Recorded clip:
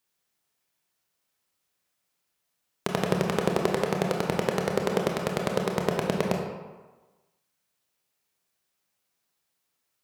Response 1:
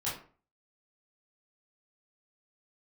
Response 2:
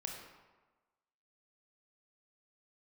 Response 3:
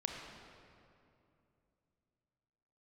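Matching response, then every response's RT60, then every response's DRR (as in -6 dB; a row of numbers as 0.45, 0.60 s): 2; 0.40, 1.2, 2.7 s; -9.0, 0.5, 1.0 dB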